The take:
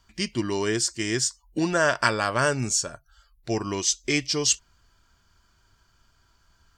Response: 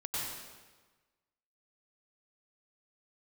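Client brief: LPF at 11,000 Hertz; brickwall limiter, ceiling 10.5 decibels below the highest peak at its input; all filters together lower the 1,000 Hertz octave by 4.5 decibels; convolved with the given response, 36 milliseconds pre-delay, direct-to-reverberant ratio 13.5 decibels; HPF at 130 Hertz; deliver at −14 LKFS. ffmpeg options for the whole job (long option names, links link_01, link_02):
-filter_complex "[0:a]highpass=130,lowpass=11000,equalizer=frequency=1000:width_type=o:gain=-6.5,alimiter=limit=-16.5dB:level=0:latency=1,asplit=2[link_01][link_02];[1:a]atrim=start_sample=2205,adelay=36[link_03];[link_02][link_03]afir=irnorm=-1:irlink=0,volume=-17.5dB[link_04];[link_01][link_04]amix=inputs=2:normalize=0,volume=14.5dB"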